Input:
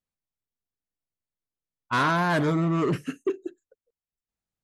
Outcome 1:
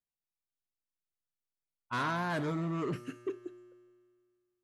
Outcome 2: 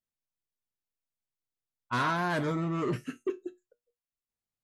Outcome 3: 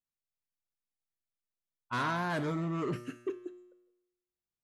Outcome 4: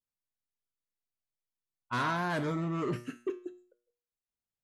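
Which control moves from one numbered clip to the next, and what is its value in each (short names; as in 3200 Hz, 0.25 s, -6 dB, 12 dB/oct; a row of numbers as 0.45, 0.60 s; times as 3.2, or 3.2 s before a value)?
resonator, decay: 2, 0.17, 0.95, 0.45 s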